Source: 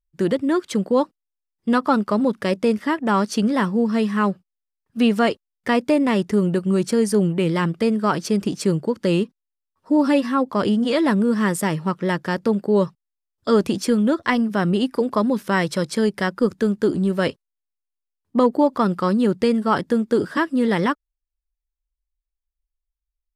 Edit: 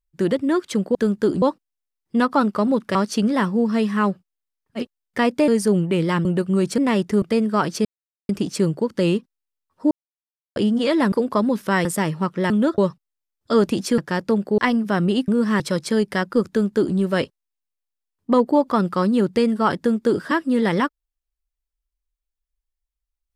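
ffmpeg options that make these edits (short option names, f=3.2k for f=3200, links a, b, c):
-filter_complex "[0:a]asplit=20[a][b][c][d][e][f][g][h][i][j][k][l][m][n][o][p][q][r][s][t];[a]atrim=end=0.952[u];[b]atrim=start=16.548:end=17.022[v];[c]atrim=start=0.948:end=2.482[w];[d]atrim=start=3.148:end=5.05[x];[e]atrim=start=5.25:end=5.982[y];[f]atrim=start=6.948:end=7.722[z];[g]atrim=start=6.418:end=6.952[aa];[h]atrim=start=5.978:end=6.422[ab];[i]atrim=start=7.718:end=8.35,asetpts=PTS-STARTPTS,afade=t=out:st=0.628:d=0.004:c=hsin,apad=pad_dur=0.44[ac];[j]atrim=start=8.35:end=9.97,asetpts=PTS-STARTPTS,afade=t=in:d=0.004:c=hsin,afade=t=out:st=1.616:d=0.004:c=hsin[ad];[k]atrim=start=9.97:end=10.62,asetpts=PTS-STARTPTS,volume=0[ae];[l]atrim=start=10.62:end=11.182,asetpts=PTS-STARTPTS,afade=t=in:d=0.004:c=hsin[af];[m]atrim=start=14.928:end=15.662[ag];[n]atrim=start=11.498:end=12.152[ah];[o]atrim=start=13.948:end=14.232[ai];[p]atrim=start=12.748:end=13.952[aj];[q]atrim=start=12.148:end=12.752[ak];[r]atrim=start=14.228:end=14.932[al];[s]atrim=start=11.178:end=11.502[am];[t]atrim=start=15.658[an];[u][v]acrossfade=d=0.004:c1=hsin:c2=hsin[ao];[ao][w]acrossfade=d=0.004:c1=hsin:c2=hsin[ap];[ap][x]acrossfade=d=0.004:c1=hsin:c2=hsin[aq];[aq][y]acrossfade=d=0.1:c1=tri:c2=tri[ar];[ar][z]acrossfade=d=0.004:c1=hsin:c2=hsin[as];[as][aa]acrossfade=d=0.004:c1=hsin:c2=hsin[at];[at][ab]acrossfade=d=0.004:c1=hsin:c2=hsin[au];[ac][ad][ae][af]concat=n=4:v=0:a=1[av];[au][av]acrossfade=d=0.004:c1=hsin:c2=hsin[aw];[aw][ag]acrossfade=d=0.004:c1=hsin:c2=hsin[ax];[ax][ah]acrossfade=d=0.004:c1=hsin:c2=hsin[ay];[ay][ai]acrossfade=d=0.004:c1=hsin:c2=hsin[az];[az][aj]acrossfade=d=0.004:c1=hsin:c2=hsin[ba];[ba][ak]acrossfade=d=0.004:c1=hsin:c2=hsin[bb];[bb][al]acrossfade=d=0.004:c1=hsin:c2=hsin[bc];[bc][am]acrossfade=d=0.004:c1=hsin:c2=hsin[bd];[bd][an]acrossfade=d=0.004:c1=hsin:c2=hsin"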